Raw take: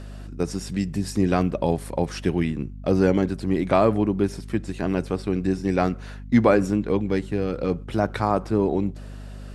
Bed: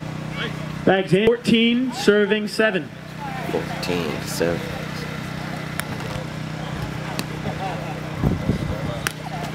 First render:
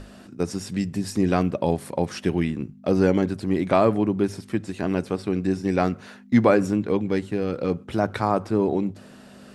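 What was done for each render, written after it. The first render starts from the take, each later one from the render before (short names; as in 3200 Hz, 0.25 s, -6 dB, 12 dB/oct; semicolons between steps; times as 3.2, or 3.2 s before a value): notches 50/100/150 Hz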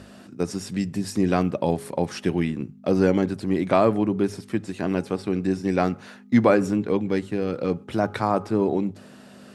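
HPF 90 Hz; de-hum 413.9 Hz, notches 3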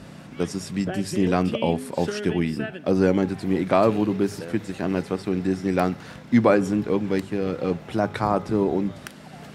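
add bed -15 dB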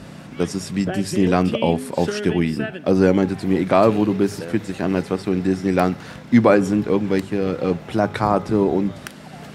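gain +4 dB; limiter -2 dBFS, peak gain reduction 1.5 dB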